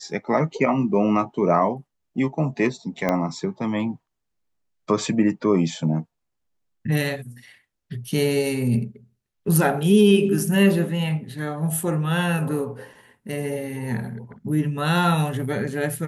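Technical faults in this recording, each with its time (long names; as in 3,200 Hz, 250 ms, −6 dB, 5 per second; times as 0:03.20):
0:03.09: click −9 dBFS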